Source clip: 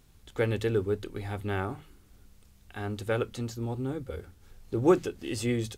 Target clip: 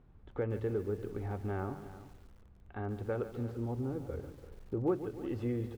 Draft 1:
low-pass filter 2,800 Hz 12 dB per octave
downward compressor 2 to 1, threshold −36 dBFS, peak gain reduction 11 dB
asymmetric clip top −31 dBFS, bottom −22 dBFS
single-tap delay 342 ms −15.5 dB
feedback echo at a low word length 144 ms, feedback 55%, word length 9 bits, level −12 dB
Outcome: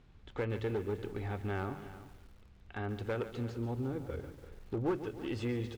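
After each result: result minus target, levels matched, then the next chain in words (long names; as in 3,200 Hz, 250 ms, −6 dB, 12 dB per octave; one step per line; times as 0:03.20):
2,000 Hz band +6.0 dB; asymmetric clip: distortion +7 dB
low-pass filter 1,200 Hz 12 dB per octave
downward compressor 2 to 1, threshold −36 dBFS, peak gain reduction 11 dB
asymmetric clip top −31 dBFS, bottom −22 dBFS
single-tap delay 342 ms −15.5 dB
feedback echo at a low word length 144 ms, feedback 55%, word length 9 bits, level −12 dB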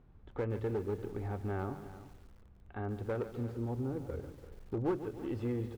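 asymmetric clip: distortion +7 dB
low-pass filter 1,200 Hz 12 dB per octave
downward compressor 2 to 1, threshold −36 dBFS, peak gain reduction 11 dB
asymmetric clip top −21.5 dBFS, bottom −22 dBFS
single-tap delay 342 ms −15.5 dB
feedback echo at a low word length 144 ms, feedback 55%, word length 9 bits, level −12 dB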